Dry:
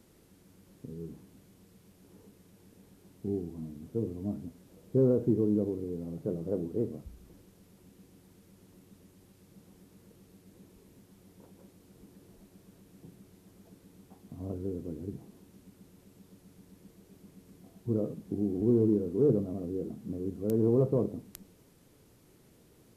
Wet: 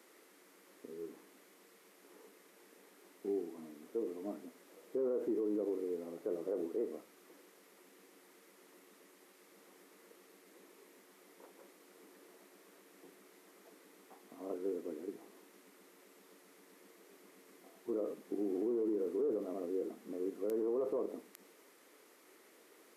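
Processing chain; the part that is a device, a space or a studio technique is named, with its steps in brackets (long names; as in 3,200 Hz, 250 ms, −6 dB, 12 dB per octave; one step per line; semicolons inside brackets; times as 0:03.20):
laptop speaker (high-pass filter 330 Hz 24 dB per octave; parametric band 1,200 Hz +5.5 dB 0.55 octaves; parametric band 2,000 Hz +7.5 dB 0.56 octaves; brickwall limiter −29 dBFS, peak gain reduction 11.5 dB)
level +1 dB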